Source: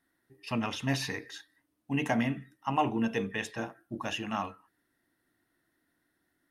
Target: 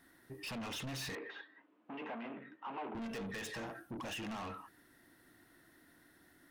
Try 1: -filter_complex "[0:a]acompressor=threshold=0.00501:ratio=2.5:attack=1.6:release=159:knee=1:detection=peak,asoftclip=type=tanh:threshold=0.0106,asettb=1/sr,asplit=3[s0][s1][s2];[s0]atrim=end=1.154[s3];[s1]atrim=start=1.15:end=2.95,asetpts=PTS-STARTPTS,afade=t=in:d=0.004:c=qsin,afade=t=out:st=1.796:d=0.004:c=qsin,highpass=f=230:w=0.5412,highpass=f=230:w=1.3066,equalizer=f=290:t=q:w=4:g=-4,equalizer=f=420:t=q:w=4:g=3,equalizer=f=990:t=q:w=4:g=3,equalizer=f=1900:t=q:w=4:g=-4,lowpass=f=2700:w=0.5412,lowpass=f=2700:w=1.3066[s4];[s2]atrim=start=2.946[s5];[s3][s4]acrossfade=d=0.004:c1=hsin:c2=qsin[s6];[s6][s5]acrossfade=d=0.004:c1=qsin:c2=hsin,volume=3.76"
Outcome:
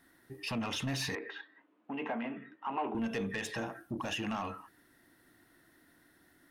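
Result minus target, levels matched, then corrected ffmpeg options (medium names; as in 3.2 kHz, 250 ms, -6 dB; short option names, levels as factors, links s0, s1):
saturation: distortion -9 dB
-filter_complex "[0:a]acompressor=threshold=0.00501:ratio=2.5:attack=1.6:release=159:knee=1:detection=peak,asoftclip=type=tanh:threshold=0.00266,asettb=1/sr,asplit=3[s0][s1][s2];[s0]atrim=end=1.154[s3];[s1]atrim=start=1.15:end=2.95,asetpts=PTS-STARTPTS,afade=t=in:d=0.004:c=qsin,afade=t=out:st=1.796:d=0.004:c=qsin,highpass=f=230:w=0.5412,highpass=f=230:w=1.3066,equalizer=f=290:t=q:w=4:g=-4,equalizer=f=420:t=q:w=4:g=3,equalizer=f=990:t=q:w=4:g=3,equalizer=f=1900:t=q:w=4:g=-4,lowpass=f=2700:w=0.5412,lowpass=f=2700:w=1.3066[s4];[s2]atrim=start=2.946[s5];[s3][s4]acrossfade=d=0.004:c1=hsin:c2=qsin[s6];[s6][s5]acrossfade=d=0.004:c1=qsin:c2=hsin,volume=3.76"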